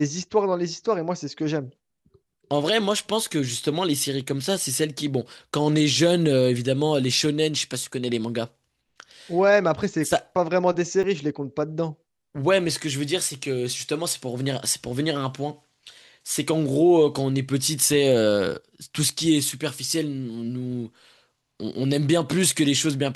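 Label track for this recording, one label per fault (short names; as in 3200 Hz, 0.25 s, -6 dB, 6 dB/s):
11.030000	11.040000	gap 7.4 ms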